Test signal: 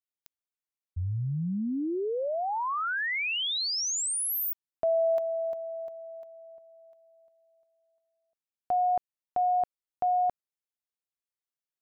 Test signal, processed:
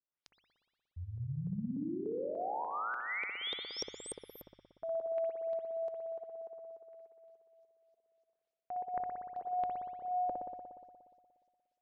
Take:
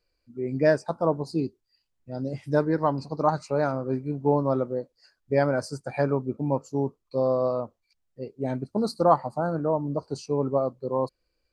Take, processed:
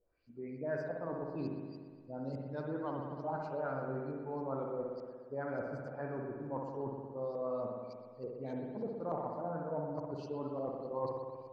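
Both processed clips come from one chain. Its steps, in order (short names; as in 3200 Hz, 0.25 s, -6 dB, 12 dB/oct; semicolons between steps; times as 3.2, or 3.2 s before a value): LFO low-pass saw up 3.4 Hz 440–6600 Hz; reverse; compressor 4:1, threshold -37 dBFS; reverse; notches 50/100 Hz; spring tank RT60 1.8 s, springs 59 ms, chirp 70 ms, DRR 0 dB; gain -3.5 dB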